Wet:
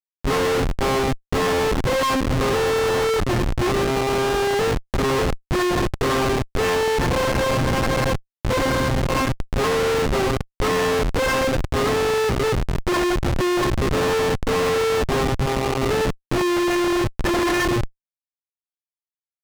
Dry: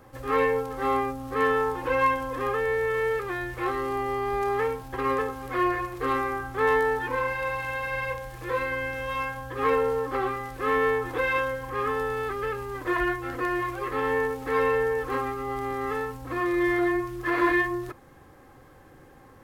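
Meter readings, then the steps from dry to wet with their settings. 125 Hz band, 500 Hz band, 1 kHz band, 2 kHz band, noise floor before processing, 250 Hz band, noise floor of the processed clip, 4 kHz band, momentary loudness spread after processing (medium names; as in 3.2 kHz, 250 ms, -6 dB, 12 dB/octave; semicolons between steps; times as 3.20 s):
+14.5 dB, +6.0 dB, +3.0 dB, +2.5 dB, -52 dBFS, +8.0 dB, under -85 dBFS, +16.5 dB, 3 LU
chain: Schmitt trigger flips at -27.5 dBFS; treble shelf 10 kHz -10.5 dB; trim +8 dB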